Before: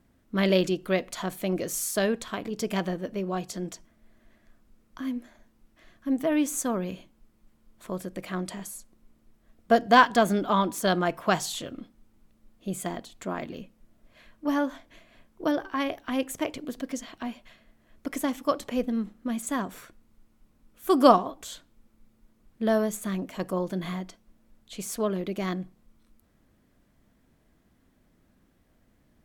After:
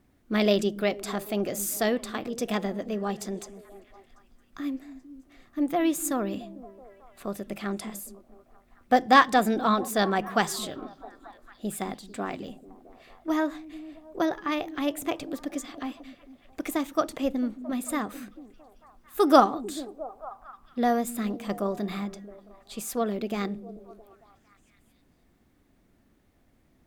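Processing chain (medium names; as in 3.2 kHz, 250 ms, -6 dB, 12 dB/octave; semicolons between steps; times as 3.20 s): repeats whose band climbs or falls 242 ms, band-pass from 190 Hz, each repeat 0.7 oct, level -11.5 dB; speed mistake 44.1 kHz file played as 48 kHz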